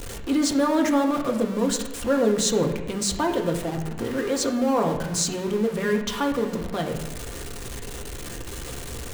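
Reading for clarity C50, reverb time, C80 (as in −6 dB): 8.0 dB, 1.1 s, 10.0 dB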